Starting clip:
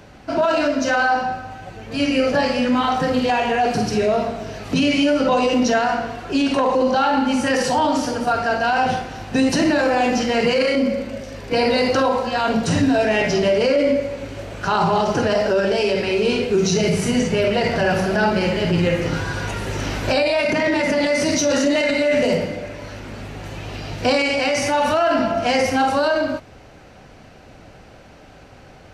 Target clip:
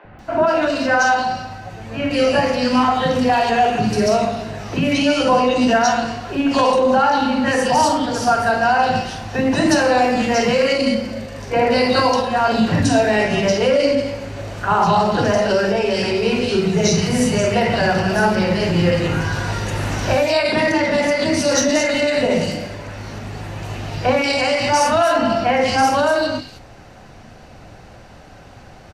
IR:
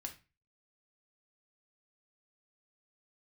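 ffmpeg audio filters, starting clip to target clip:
-filter_complex "[0:a]acrossover=split=370|2600[s0][s1][s2];[s0]adelay=40[s3];[s2]adelay=190[s4];[s3][s1][s4]amix=inputs=3:normalize=0,asplit=2[s5][s6];[1:a]atrim=start_sample=2205[s7];[s6][s7]afir=irnorm=-1:irlink=0,volume=0.841[s8];[s5][s8]amix=inputs=2:normalize=0"

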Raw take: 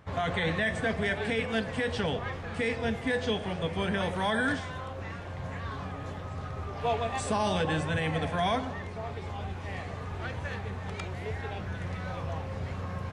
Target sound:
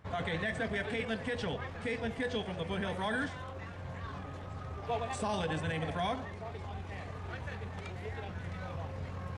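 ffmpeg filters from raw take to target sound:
-filter_complex "[0:a]asplit=2[s0][s1];[s1]asoftclip=type=tanh:threshold=0.0531,volume=0.316[s2];[s0][s2]amix=inputs=2:normalize=0,atempo=1.4,volume=0.447"

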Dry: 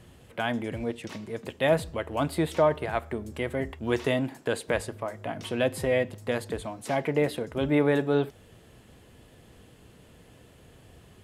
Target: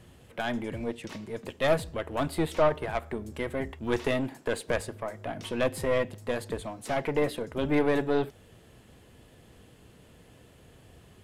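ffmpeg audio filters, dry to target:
-af "acontrast=58,aeval=exprs='0.501*(cos(1*acos(clip(val(0)/0.501,-1,1)))-cos(1*PI/2))+0.0794*(cos(4*acos(clip(val(0)/0.501,-1,1)))-cos(4*PI/2))':c=same,volume=0.422"

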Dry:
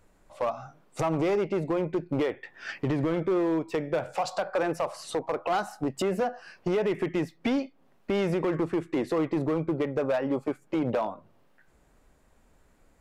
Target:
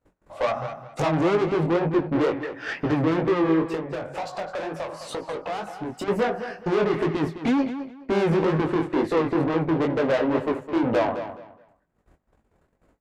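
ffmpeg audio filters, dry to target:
-filter_complex "[0:a]highshelf=f=2500:g=-11,aeval=exprs='(tanh(35.5*val(0)+0.35)-tanh(0.35))/35.5':c=same,acontrast=54,agate=range=0.0447:threshold=0.00224:ratio=16:detection=peak,flanger=delay=18:depth=7.3:speed=2.1,asettb=1/sr,asplit=3[s0][s1][s2];[s0]atrim=end=3.744[s3];[s1]atrim=start=3.74:end=6.08,asetpts=PTS-STARTPTS,afade=t=in:d=0.004:c=qsin,afade=t=out:st=2.336:d=0.004:c=qsin,acompressor=threshold=0.01:ratio=2.5[s4];[s2]atrim=start=6.076[s5];[s3][s4]acrossfade=d=0.004:c1=hsin:c2=qsin[s6];[s6][s5]acrossfade=d=0.004:c1=qsin:c2=hsin,highpass=f=67:p=1,asplit=2[s7][s8];[s8]adelay=210,lowpass=f=4900:p=1,volume=0.299,asplit=2[s9][s10];[s10]adelay=210,lowpass=f=4900:p=1,volume=0.24,asplit=2[s11][s12];[s12]adelay=210,lowpass=f=4900:p=1,volume=0.24[s13];[s7][s9][s11][s13]amix=inputs=4:normalize=0,volume=2.82"

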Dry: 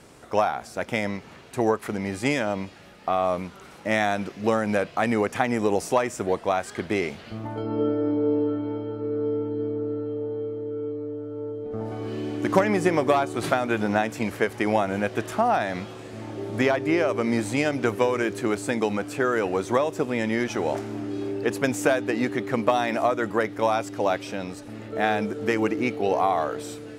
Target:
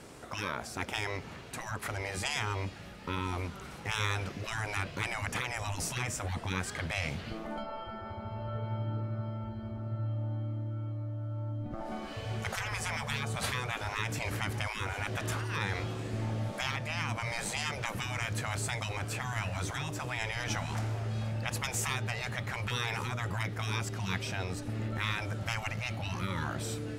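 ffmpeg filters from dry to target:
-af "afftfilt=real='re*lt(hypot(re,im),0.112)':imag='im*lt(hypot(re,im),0.112)':win_size=1024:overlap=0.75,asubboost=boost=3:cutoff=190"

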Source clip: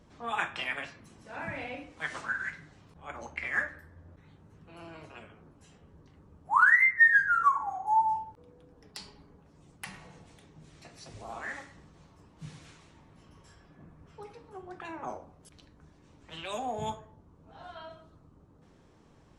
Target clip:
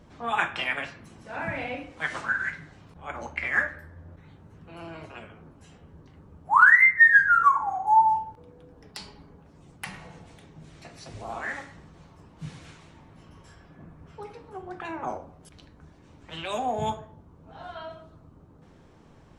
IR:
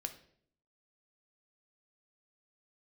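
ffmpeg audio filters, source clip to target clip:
-filter_complex "[0:a]asplit=2[s0][s1];[1:a]atrim=start_sample=2205,lowpass=4500[s2];[s1][s2]afir=irnorm=-1:irlink=0,volume=0.531[s3];[s0][s3]amix=inputs=2:normalize=0,volume=1.41"

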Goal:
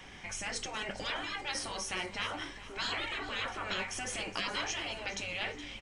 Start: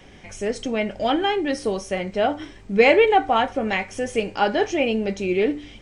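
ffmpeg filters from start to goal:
-af "lowshelf=f=730:t=q:w=1.5:g=-6.5,afftfilt=real='re*lt(hypot(re,im),0.1)':imag='im*lt(hypot(re,im),0.1)':win_size=1024:overlap=0.75,aecho=1:1:417|834|1251:0.168|0.0621|0.023"

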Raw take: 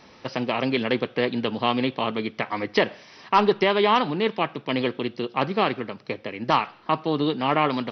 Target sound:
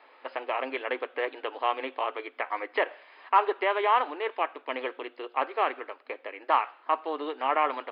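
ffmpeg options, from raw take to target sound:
-filter_complex "[0:a]acrossover=split=480 2900:gain=0.112 1 0.0708[s0][s1][s2];[s0][s1][s2]amix=inputs=3:normalize=0,acrossover=split=3500[s3][s4];[s4]acompressor=threshold=0.00126:ratio=4:attack=1:release=60[s5];[s3][s5]amix=inputs=2:normalize=0,afftfilt=real='re*between(b*sr/4096,250,5100)':imag='im*between(b*sr/4096,250,5100)':win_size=4096:overlap=0.75,volume=0.841"

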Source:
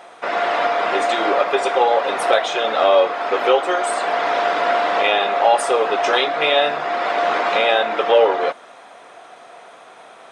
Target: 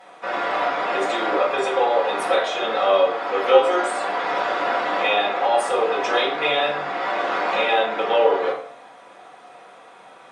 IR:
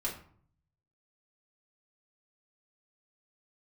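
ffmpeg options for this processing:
-filter_complex "[0:a]asettb=1/sr,asplit=3[s0][s1][s2];[s0]atrim=end=3.464[s3];[s1]atrim=start=3.46:end=3.87,asetpts=PTS-STARTPTS,afade=t=in:d=0.004:c=qsin,afade=t=out:st=0.406:d=0.004:c=qsin,asplit=2[s4][s5];[s5]adelay=19,volume=0.794[s6];[s4][s6]amix=inputs=2:normalize=0,atrim=end_sample=18081[s7];[s2]atrim=start=3.866[s8];[s3][s7]acrossfade=d=0.004:c1=hsin:c2=qsin[s9];[s9][s8]acrossfade=d=0.004:c1=qsin:c2=hsin[s10];[1:a]atrim=start_sample=2205,asetrate=35721,aresample=44100[s11];[s10][s11]afir=irnorm=-1:irlink=0,volume=0.422"

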